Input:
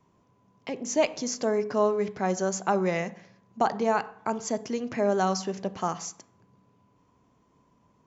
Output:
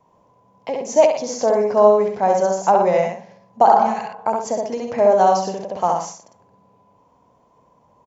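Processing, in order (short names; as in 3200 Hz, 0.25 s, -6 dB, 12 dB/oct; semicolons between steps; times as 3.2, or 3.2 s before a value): band shelf 690 Hz +10.5 dB 1.3 oct; spectral repair 3.71–4.04, 290–1600 Hz both; on a send: loudspeakers at several distances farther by 23 m -3 dB, 41 m -8 dB; on the sum: ending taper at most 120 dB/s; gain +1 dB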